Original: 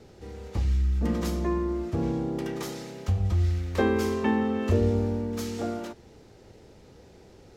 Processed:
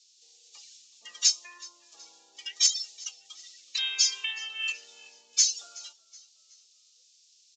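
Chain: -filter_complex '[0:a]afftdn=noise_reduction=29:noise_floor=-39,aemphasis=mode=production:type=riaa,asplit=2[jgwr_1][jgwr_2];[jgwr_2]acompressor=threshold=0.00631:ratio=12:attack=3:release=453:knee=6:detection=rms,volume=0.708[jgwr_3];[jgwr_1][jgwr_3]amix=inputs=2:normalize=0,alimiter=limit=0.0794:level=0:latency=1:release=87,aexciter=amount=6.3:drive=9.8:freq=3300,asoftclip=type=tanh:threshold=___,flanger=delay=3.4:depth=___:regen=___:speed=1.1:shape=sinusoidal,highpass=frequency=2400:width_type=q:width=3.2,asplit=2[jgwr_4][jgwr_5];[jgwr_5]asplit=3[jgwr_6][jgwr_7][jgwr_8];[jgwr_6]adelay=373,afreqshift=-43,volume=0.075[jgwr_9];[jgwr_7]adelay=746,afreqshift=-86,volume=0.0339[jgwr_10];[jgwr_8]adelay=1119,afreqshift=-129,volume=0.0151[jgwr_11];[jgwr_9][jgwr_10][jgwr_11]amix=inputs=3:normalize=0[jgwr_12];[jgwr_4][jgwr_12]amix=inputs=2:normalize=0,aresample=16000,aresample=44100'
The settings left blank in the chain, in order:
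0.335, 4.7, 75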